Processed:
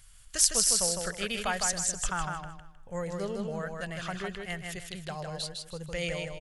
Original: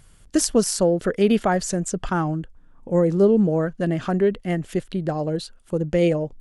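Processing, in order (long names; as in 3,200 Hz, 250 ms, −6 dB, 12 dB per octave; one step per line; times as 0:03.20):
guitar amp tone stack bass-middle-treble 10-0-10
on a send: repeating echo 156 ms, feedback 29%, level −4 dB
on the sum: level +1.5 dB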